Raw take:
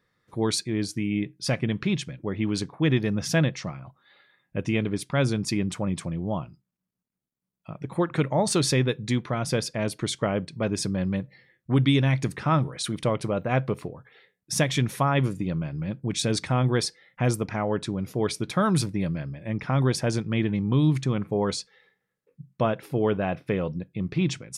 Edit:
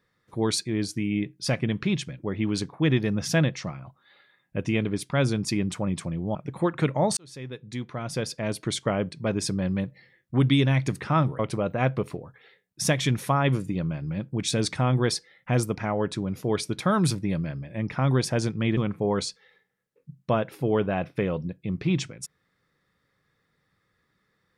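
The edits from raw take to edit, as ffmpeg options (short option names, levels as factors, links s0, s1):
-filter_complex "[0:a]asplit=5[s0][s1][s2][s3][s4];[s0]atrim=end=6.352[s5];[s1]atrim=start=7.708:end=8.53,asetpts=PTS-STARTPTS,afade=t=out:st=0.818:d=0.004:c=hsin[s6];[s2]atrim=start=8.53:end=12.752,asetpts=PTS-STARTPTS,afade=t=in:d=1.54[s7];[s3]atrim=start=13.098:end=20.482[s8];[s4]atrim=start=21.078[s9];[s6][s7]concat=n=2:v=0:a=1[s10];[s5][s10]acrossfade=d=0.004:c1=hsin:c2=hsin[s11];[s11][s8]acrossfade=d=0.004:c1=hsin:c2=hsin[s12];[s12][s9]acrossfade=d=0.004:c1=hsin:c2=hsin"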